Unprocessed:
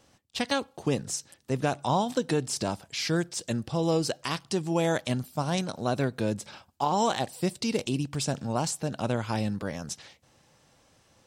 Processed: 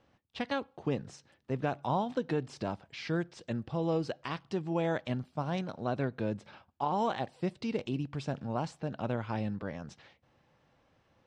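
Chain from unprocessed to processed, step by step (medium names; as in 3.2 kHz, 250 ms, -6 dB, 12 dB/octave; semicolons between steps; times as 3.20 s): low-pass 2.7 kHz 12 dB/octave; trim -5 dB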